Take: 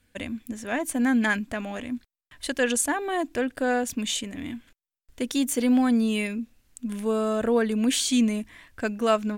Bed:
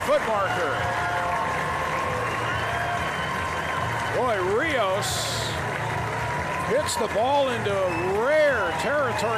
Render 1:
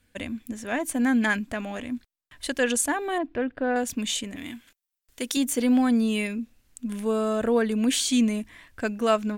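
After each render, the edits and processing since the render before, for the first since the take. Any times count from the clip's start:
0:03.18–0:03.76: high-frequency loss of the air 370 metres
0:04.36–0:05.37: spectral tilt +2 dB per octave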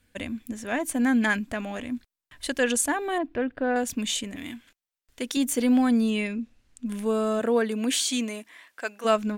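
0:04.53–0:05.39: high-shelf EQ 8,900 Hz → 5,900 Hz −8.5 dB
0:06.10–0:06.86: high-frequency loss of the air 56 metres
0:07.39–0:09.04: high-pass filter 180 Hz → 710 Hz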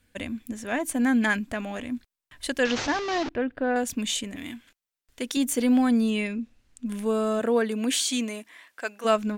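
0:02.65–0:03.29: linear delta modulator 32 kbit/s, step −24.5 dBFS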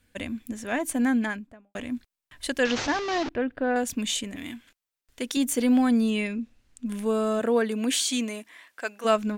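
0:00.94–0:01.75: fade out and dull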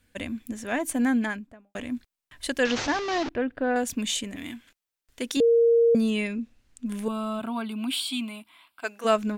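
0:05.40–0:05.95: beep over 465 Hz −15.5 dBFS
0:07.08–0:08.84: phaser with its sweep stopped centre 1,800 Hz, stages 6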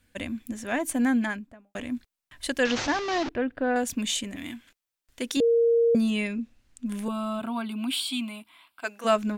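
notch filter 440 Hz, Q 12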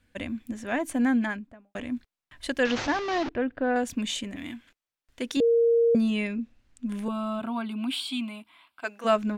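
high-shelf EQ 5,900 Hz −10.5 dB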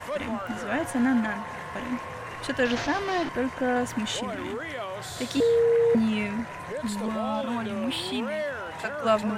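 mix in bed −11 dB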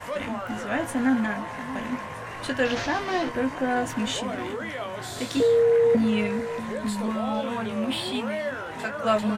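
double-tracking delay 19 ms −7 dB
delay that swaps between a low-pass and a high-pass 635 ms, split 1,100 Hz, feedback 55%, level −13 dB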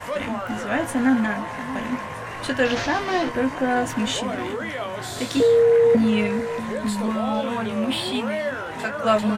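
level +3.5 dB

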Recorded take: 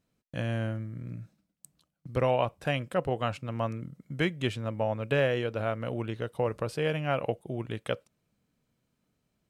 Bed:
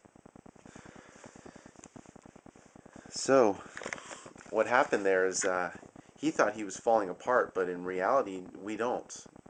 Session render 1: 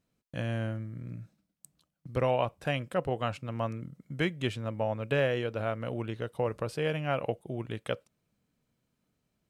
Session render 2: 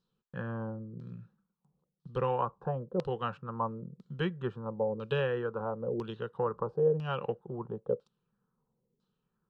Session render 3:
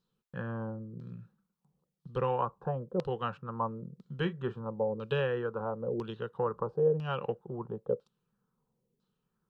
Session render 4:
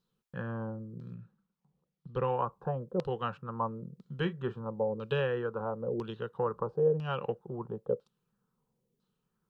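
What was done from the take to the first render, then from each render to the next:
level −1.5 dB
phaser with its sweep stopped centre 430 Hz, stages 8; auto-filter low-pass saw down 1 Hz 390–4,400 Hz
0:04.18–0:04.64: double-tracking delay 36 ms −12.5 dB
0:01.14–0:02.47: high-frequency loss of the air 120 metres

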